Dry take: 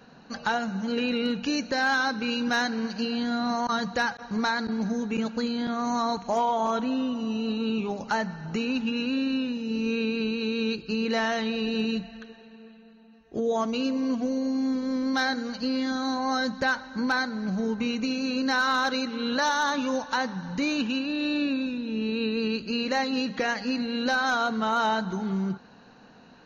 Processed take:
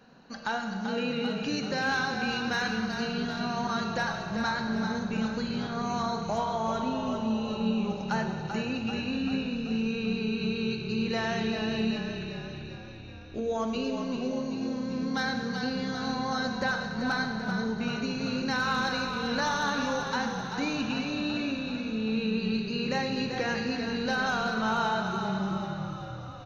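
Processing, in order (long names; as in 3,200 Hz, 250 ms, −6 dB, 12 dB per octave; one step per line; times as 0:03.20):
echo with shifted repeats 388 ms, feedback 62%, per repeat −35 Hz, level −7 dB
four-comb reverb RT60 1.8 s, combs from 32 ms, DRR 5.5 dB
level −5 dB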